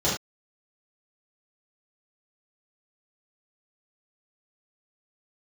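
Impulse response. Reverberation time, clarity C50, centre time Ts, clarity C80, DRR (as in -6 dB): not exponential, 4.0 dB, 40 ms, 9.5 dB, -9.0 dB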